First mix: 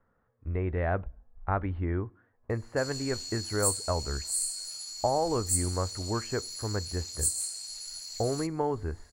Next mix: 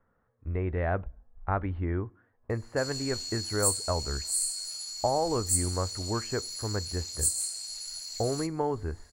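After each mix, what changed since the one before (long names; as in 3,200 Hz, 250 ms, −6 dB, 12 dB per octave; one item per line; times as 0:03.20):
background: send +11.5 dB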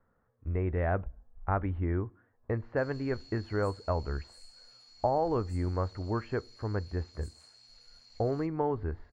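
background −8.5 dB
master: add high-frequency loss of the air 250 metres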